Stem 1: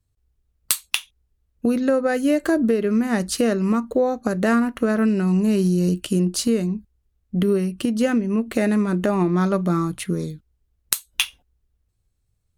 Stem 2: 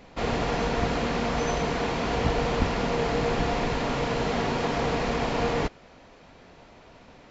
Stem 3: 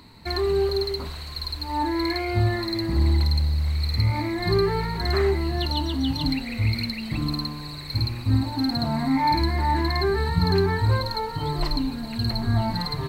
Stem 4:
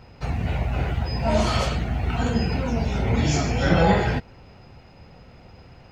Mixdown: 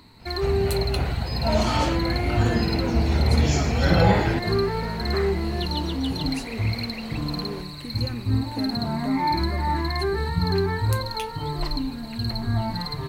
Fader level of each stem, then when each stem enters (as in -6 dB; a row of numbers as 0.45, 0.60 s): -16.0, -13.5, -2.0, -1.0 dB; 0.00, 1.95, 0.00, 0.20 s